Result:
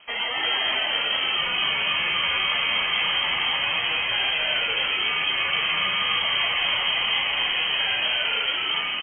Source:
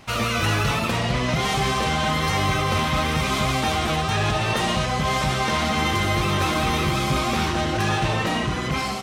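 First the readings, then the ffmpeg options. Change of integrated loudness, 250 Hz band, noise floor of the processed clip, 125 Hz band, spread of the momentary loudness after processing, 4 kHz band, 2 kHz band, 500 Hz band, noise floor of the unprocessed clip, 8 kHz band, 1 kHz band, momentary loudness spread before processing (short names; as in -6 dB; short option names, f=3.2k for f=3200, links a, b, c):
+0.5 dB, -19.5 dB, -27 dBFS, -24.5 dB, 1 LU, +7.0 dB, +2.5 dB, -10.5 dB, -26 dBFS, under -40 dB, -7.5 dB, 2 LU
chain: -filter_complex "[0:a]asplit=9[a][b][c][d][e][f][g][h][i];[b]adelay=288,afreqshift=80,volume=-4dB[j];[c]adelay=576,afreqshift=160,volume=-9dB[k];[d]adelay=864,afreqshift=240,volume=-14.1dB[l];[e]adelay=1152,afreqshift=320,volume=-19.1dB[m];[f]adelay=1440,afreqshift=400,volume=-24.1dB[n];[g]adelay=1728,afreqshift=480,volume=-29.2dB[o];[h]adelay=2016,afreqshift=560,volume=-34.2dB[p];[i]adelay=2304,afreqshift=640,volume=-39.3dB[q];[a][j][k][l][m][n][o][p][q]amix=inputs=9:normalize=0,lowpass=f=2.8k:t=q:w=0.5098,lowpass=f=2.8k:t=q:w=0.6013,lowpass=f=2.8k:t=q:w=0.9,lowpass=f=2.8k:t=q:w=2.563,afreqshift=-3300,volume=-3.5dB"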